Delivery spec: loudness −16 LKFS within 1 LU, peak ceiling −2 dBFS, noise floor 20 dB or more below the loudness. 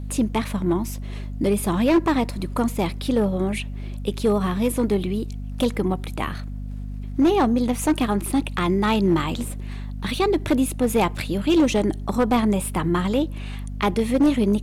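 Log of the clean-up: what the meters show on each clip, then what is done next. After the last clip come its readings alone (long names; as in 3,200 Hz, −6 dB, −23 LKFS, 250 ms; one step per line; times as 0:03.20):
share of clipped samples 1.0%; peaks flattened at −12.5 dBFS; mains hum 50 Hz; hum harmonics up to 250 Hz; level of the hum −29 dBFS; integrated loudness −22.5 LKFS; sample peak −12.5 dBFS; target loudness −16.0 LKFS
→ clipped peaks rebuilt −12.5 dBFS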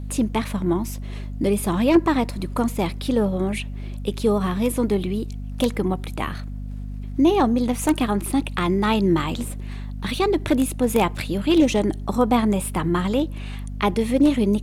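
share of clipped samples 0.0%; mains hum 50 Hz; hum harmonics up to 250 Hz; level of the hum −29 dBFS
→ hum removal 50 Hz, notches 5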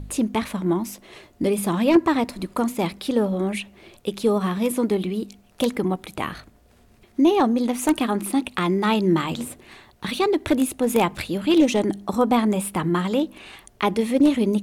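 mains hum none found; integrated loudness −22.5 LKFS; sample peak −3.5 dBFS; target loudness −16.0 LKFS
→ level +6.5 dB
brickwall limiter −2 dBFS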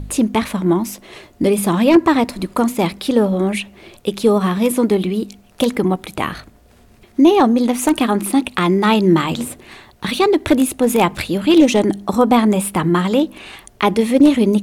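integrated loudness −16.0 LKFS; sample peak −2.0 dBFS; background noise floor −49 dBFS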